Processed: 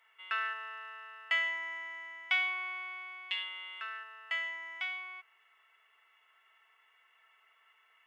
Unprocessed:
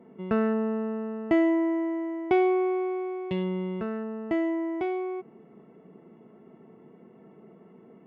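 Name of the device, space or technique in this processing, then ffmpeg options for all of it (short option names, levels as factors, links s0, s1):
headphones lying on a table: -af "highpass=f=1500:w=0.5412,highpass=f=1500:w=1.3066,equalizer=f=3100:t=o:w=0.38:g=6.5,volume=2.11"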